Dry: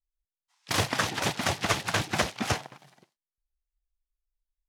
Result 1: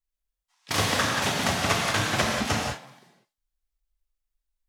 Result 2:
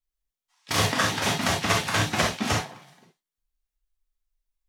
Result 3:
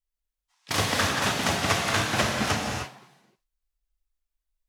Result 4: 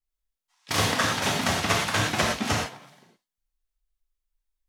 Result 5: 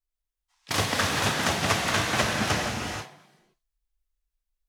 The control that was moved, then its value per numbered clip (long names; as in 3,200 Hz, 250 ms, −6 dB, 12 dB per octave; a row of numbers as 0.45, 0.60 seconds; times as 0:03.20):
reverb whose tail is shaped and stops, gate: 220, 90, 330, 140, 510 milliseconds